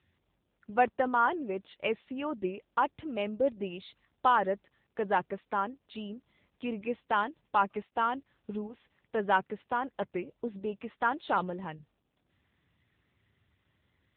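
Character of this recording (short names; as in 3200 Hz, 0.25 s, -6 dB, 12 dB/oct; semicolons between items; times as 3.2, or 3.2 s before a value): a quantiser's noise floor 12-bit, dither none; AMR-NB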